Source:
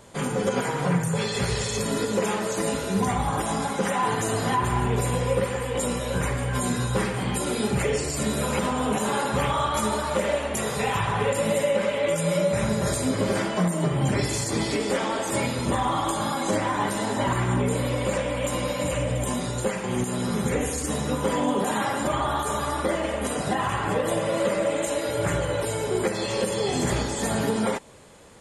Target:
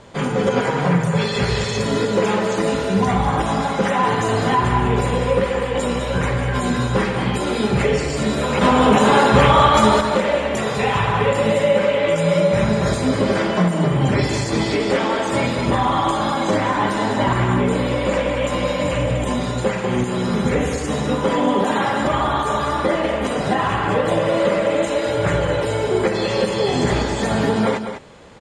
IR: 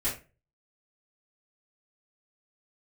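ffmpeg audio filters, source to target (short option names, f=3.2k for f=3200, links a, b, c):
-filter_complex "[0:a]lowpass=4.8k,asettb=1/sr,asplit=3[a][b][c];[a]atrim=end=8.614[d];[b]atrim=start=8.61:end=10.01,asetpts=PTS-STARTPTS,afade=t=in:d=0.004:c=qsin,afade=t=out:st=1.396:d=0.004:c=qsin,acontrast=43[e];[c]atrim=start=10.006[f];[d][e]acrossfade=d=0.004:c1=hsin:c2=qsin[g];[g][f]acrossfade=d=0.004:c1=qsin:c2=hsin,aecho=1:1:200:0.355,volume=6dB"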